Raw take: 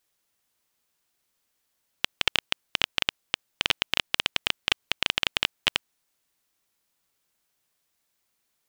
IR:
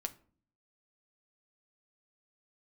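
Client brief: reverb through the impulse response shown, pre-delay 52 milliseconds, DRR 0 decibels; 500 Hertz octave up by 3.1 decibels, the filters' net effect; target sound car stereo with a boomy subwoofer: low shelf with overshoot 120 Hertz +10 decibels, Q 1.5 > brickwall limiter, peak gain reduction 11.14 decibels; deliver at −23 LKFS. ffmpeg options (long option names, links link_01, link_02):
-filter_complex "[0:a]equalizer=frequency=500:width_type=o:gain=4.5,asplit=2[link_01][link_02];[1:a]atrim=start_sample=2205,adelay=52[link_03];[link_02][link_03]afir=irnorm=-1:irlink=0,volume=1dB[link_04];[link_01][link_04]amix=inputs=2:normalize=0,lowshelf=frequency=120:width_type=q:width=1.5:gain=10,volume=10dB,alimiter=limit=-1.5dB:level=0:latency=1"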